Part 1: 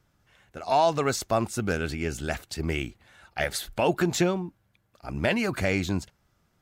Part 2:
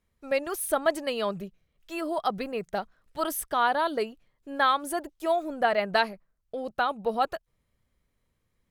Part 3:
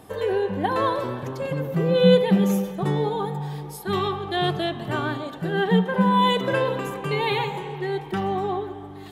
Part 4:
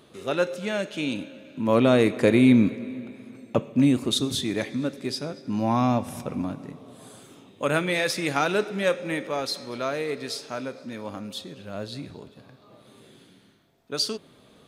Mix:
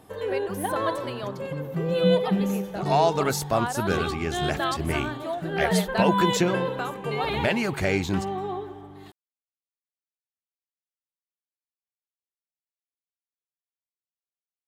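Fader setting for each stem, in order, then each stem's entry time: +0.5 dB, -6.0 dB, -5.0 dB, mute; 2.20 s, 0.00 s, 0.00 s, mute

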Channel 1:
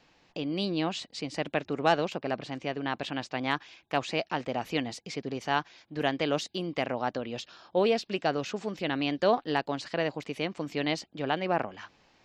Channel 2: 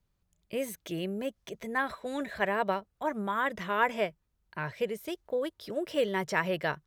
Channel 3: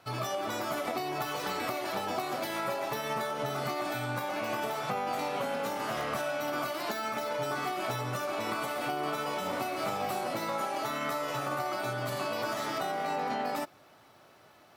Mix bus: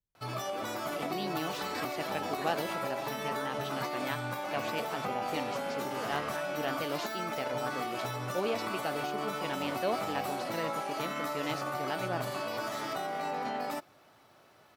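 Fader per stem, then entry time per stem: -8.0 dB, -16.5 dB, -2.5 dB; 0.60 s, 0.00 s, 0.15 s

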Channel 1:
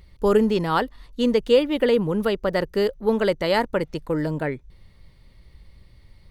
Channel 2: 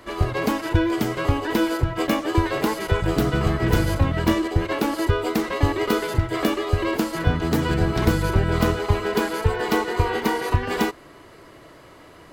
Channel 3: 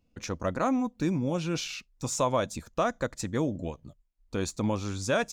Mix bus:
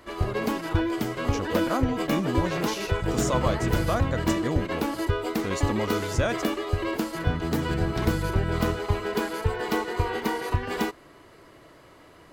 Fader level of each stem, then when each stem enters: -17.0 dB, -5.0 dB, -0.5 dB; 0.00 s, 0.00 s, 1.10 s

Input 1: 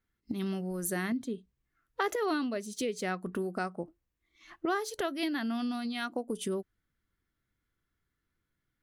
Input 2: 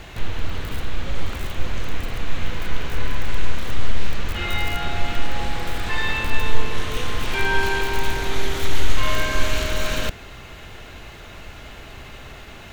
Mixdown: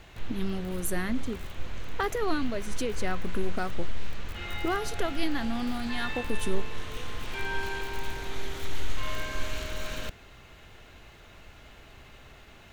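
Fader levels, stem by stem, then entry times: +1.0 dB, -11.5 dB; 0.00 s, 0.00 s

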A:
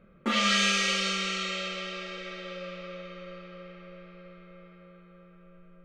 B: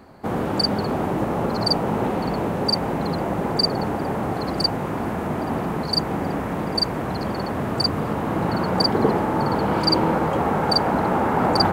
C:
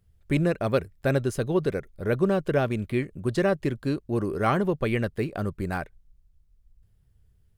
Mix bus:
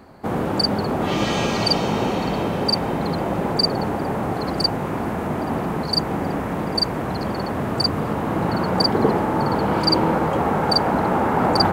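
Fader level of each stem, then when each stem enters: -4.0 dB, +1.0 dB, -18.5 dB; 0.75 s, 0.00 s, 0.00 s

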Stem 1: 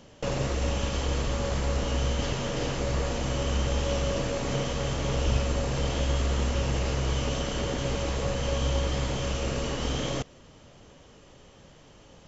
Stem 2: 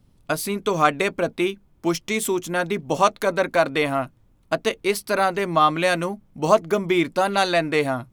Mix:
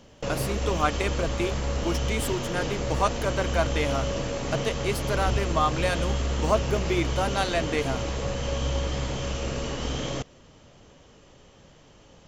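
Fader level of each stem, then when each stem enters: -0.5 dB, -7.0 dB; 0.00 s, 0.00 s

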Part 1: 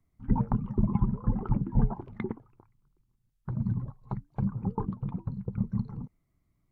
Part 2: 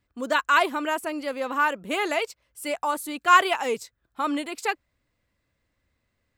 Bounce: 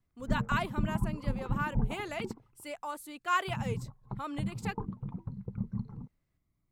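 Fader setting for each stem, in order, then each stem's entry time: -5.5 dB, -12.5 dB; 0.00 s, 0.00 s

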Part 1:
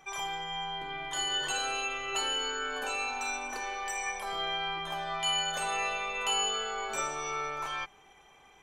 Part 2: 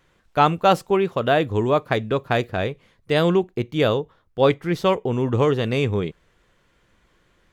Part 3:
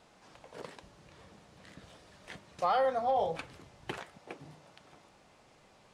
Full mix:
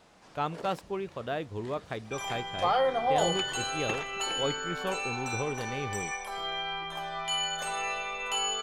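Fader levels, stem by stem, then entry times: -1.0 dB, -15.0 dB, +2.5 dB; 2.05 s, 0.00 s, 0.00 s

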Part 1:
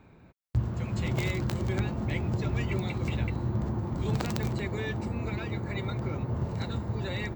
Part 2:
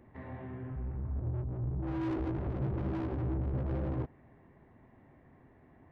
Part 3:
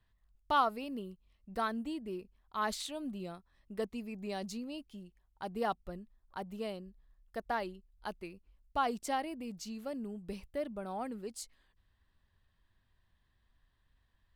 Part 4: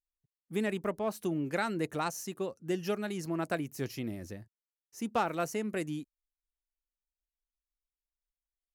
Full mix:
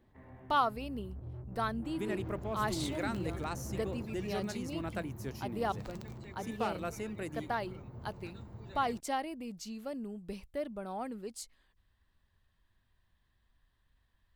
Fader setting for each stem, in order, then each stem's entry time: -16.0 dB, -9.5 dB, 0.0 dB, -6.0 dB; 1.65 s, 0.00 s, 0.00 s, 1.45 s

